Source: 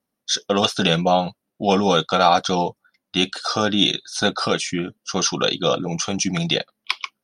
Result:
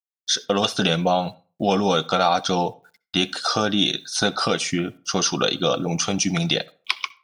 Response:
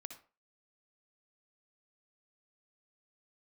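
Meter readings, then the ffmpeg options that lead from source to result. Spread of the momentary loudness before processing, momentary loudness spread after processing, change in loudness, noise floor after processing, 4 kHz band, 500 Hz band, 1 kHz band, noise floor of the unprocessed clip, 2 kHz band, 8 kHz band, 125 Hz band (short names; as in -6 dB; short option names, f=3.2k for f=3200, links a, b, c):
10 LU, 7 LU, -1.5 dB, -82 dBFS, -1.5 dB, -2.0 dB, -2.5 dB, -81 dBFS, -1.0 dB, +0.5 dB, -1.0 dB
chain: -filter_complex "[0:a]acompressor=threshold=-24dB:ratio=2,acrusher=bits=10:mix=0:aa=0.000001,asplit=2[a][b];[1:a]atrim=start_sample=2205,asetrate=40572,aresample=44100[c];[b][c]afir=irnorm=-1:irlink=0,volume=-9dB[d];[a][d]amix=inputs=2:normalize=0,volume=2dB"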